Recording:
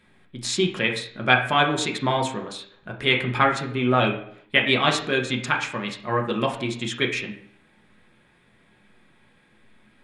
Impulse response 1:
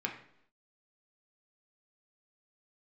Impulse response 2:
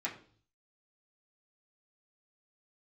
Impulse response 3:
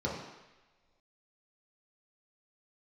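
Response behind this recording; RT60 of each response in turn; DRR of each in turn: 1; 0.70 s, 0.45 s, non-exponential decay; 0.5, −6.5, −5.0 decibels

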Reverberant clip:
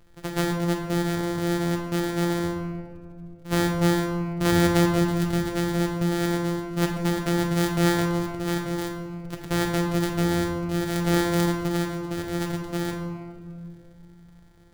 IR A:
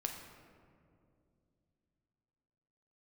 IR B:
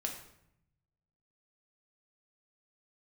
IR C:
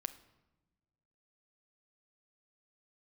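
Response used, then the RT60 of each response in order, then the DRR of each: A; 2.5 s, 0.75 s, non-exponential decay; 2.5, 1.0, 10.5 decibels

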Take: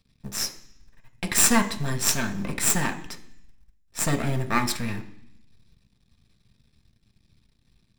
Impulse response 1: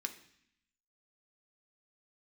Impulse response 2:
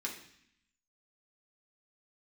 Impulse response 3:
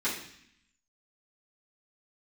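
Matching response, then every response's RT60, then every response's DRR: 1; 0.65, 0.65, 0.65 seconds; 5.0, −2.5, −12.0 decibels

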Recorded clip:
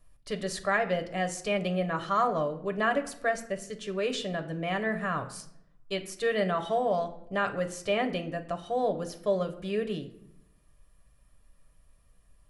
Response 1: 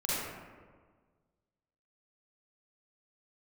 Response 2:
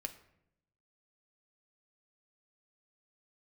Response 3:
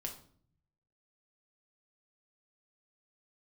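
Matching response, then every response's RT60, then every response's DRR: 2; 1.6, 0.80, 0.55 seconds; −9.0, 5.5, 1.5 decibels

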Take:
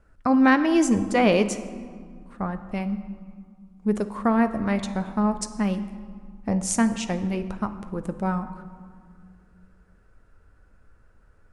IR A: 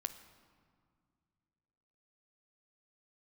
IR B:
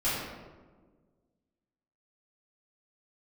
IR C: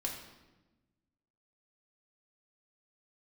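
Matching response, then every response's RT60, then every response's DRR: A; 2.1, 1.5, 1.1 seconds; 9.0, −12.5, −1.5 decibels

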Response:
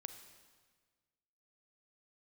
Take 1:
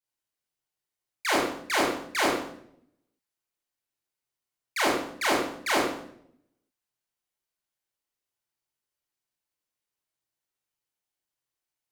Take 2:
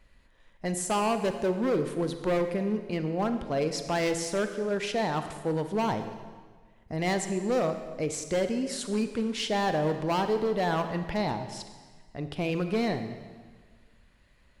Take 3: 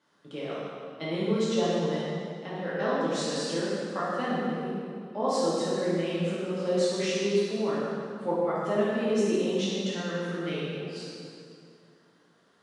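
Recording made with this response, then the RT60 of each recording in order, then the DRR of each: 2; 0.70, 1.5, 2.4 seconds; −6.5, 8.0, −9.5 decibels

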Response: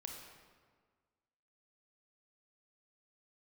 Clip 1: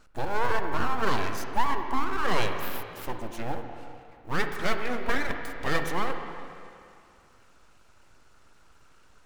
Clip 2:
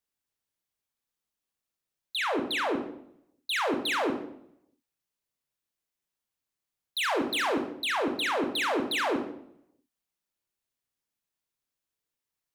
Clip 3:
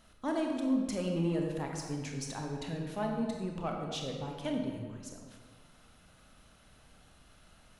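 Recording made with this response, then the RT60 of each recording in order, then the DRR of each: 3; 2.4, 0.70, 1.6 seconds; 5.0, 4.0, 1.0 decibels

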